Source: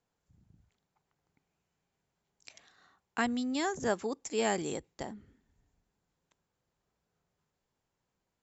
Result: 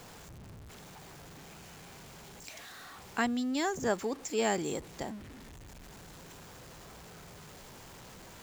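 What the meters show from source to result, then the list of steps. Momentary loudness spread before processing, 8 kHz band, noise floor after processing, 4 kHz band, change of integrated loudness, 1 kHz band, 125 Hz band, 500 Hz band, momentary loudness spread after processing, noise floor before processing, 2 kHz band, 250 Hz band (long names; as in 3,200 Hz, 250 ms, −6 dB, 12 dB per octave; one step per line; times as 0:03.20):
13 LU, can't be measured, −51 dBFS, +1.5 dB, −0.5 dB, +1.0 dB, +4.0 dB, +1.0 dB, 19 LU, −85 dBFS, +1.0 dB, +1.0 dB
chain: converter with a step at zero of −44 dBFS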